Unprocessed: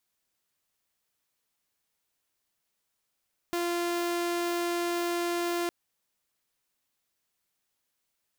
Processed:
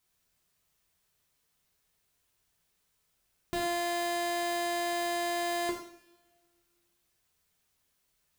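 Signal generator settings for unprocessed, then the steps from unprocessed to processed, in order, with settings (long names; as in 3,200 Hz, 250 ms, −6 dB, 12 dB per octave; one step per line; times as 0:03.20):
tone saw 346 Hz −25 dBFS 2.16 s
low-shelf EQ 160 Hz +10 dB
brickwall limiter −25 dBFS
coupled-rooms reverb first 0.56 s, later 1.7 s, from −21 dB, DRR −1.5 dB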